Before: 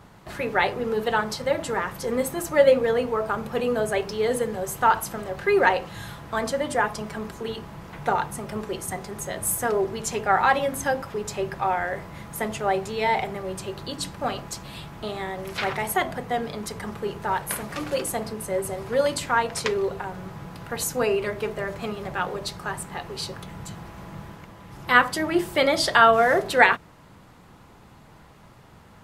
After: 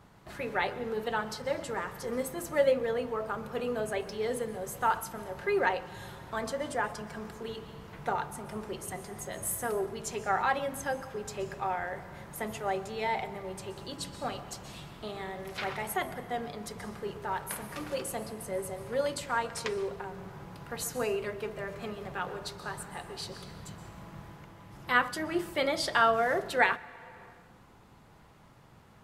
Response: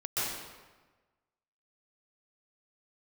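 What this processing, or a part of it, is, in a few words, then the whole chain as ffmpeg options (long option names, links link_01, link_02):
compressed reverb return: -filter_complex "[0:a]asplit=2[link_01][link_02];[1:a]atrim=start_sample=2205[link_03];[link_02][link_03]afir=irnorm=-1:irlink=0,acompressor=threshold=-23dB:ratio=6,volume=-13dB[link_04];[link_01][link_04]amix=inputs=2:normalize=0,volume=-9dB"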